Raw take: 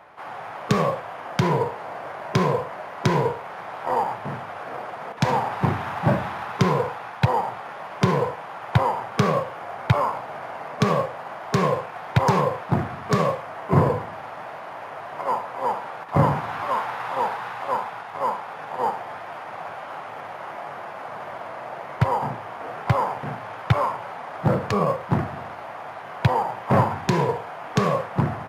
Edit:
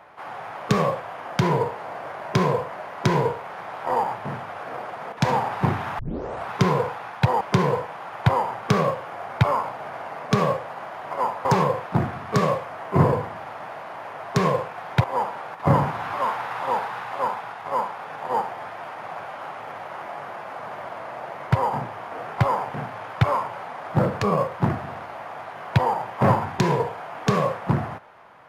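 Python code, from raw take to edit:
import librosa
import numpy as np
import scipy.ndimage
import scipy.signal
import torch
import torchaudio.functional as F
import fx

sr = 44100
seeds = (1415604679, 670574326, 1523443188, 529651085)

y = fx.edit(x, sr, fx.tape_start(start_s=5.99, length_s=0.51),
    fx.cut(start_s=7.41, length_s=0.49),
    fx.swap(start_s=11.5, length_s=0.72, other_s=15.09, other_length_s=0.44), tone=tone)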